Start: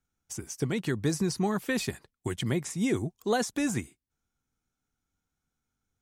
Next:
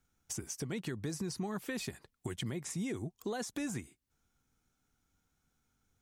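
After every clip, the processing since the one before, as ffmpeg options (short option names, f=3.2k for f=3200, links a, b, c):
-af "alimiter=limit=-24dB:level=0:latency=1:release=253,acompressor=threshold=-49dB:ratio=2,volume=5.5dB"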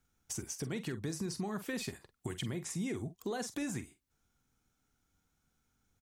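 -filter_complex "[0:a]asplit=2[a][b];[b]adelay=46,volume=-12dB[c];[a][c]amix=inputs=2:normalize=0"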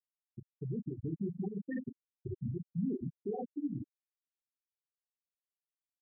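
-af "aecho=1:1:30|69|119.7|185.6|271.3:0.631|0.398|0.251|0.158|0.1,aeval=exprs='val(0)+0.00126*(sin(2*PI*60*n/s)+sin(2*PI*2*60*n/s)/2+sin(2*PI*3*60*n/s)/3+sin(2*PI*4*60*n/s)/4+sin(2*PI*5*60*n/s)/5)':c=same,afftfilt=real='re*gte(hypot(re,im),0.1)':imag='im*gte(hypot(re,im),0.1)':win_size=1024:overlap=0.75,volume=1dB"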